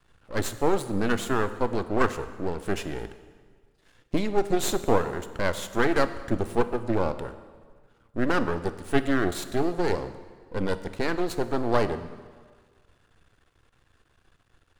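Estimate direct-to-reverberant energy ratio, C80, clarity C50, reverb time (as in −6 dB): 11.0 dB, 14.0 dB, 12.5 dB, 1.7 s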